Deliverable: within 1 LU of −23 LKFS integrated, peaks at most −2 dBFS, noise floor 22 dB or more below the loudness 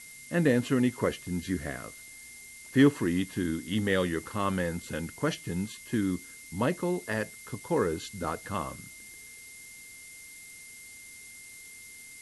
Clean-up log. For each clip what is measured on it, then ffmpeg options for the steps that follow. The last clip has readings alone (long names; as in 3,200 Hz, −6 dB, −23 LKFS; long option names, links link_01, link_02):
interfering tone 2,100 Hz; level of the tone −49 dBFS; background noise floor −48 dBFS; target noise floor −52 dBFS; integrated loudness −30.0 LKFS; sample peak −10.5 dBFS; target loudness −23.0 LKFS
→ -af "bandreject=frequency=2100:width=30"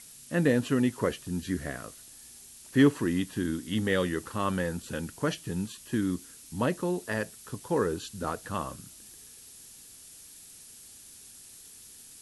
interfering tone none found; background noise floor −51 dBFS; target noise floor −52 dBFS
→ -af "afftdn=noise_reduction=6:noise_floor=-51"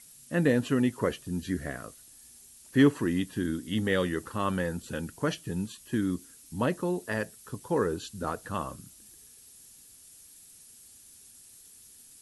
background noise floor −54 dBFS; integrated loudness −30.0 LKFS; sample peak −10.5 dBFS; target loudness −23.0 LKFS
→ -af "volume=7dB"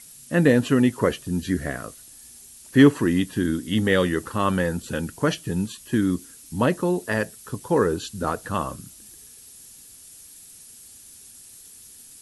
integrated loudness −23.0 LKFS; sample peak −3.5 dBFS; background noise floor −47 dBFS